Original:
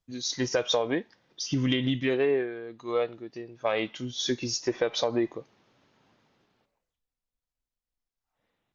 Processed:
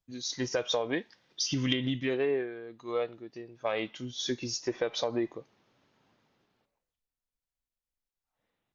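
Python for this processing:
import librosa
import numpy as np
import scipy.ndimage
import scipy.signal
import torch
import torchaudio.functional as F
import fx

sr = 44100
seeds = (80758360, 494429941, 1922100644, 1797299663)

y = fx.peak_eq(x, sr, hz=4300.0, db=7.5, octaves=2.8, at=(0.93, 1.73))
y = F.gain(torch.from_numpy(y), -4.0).numpy()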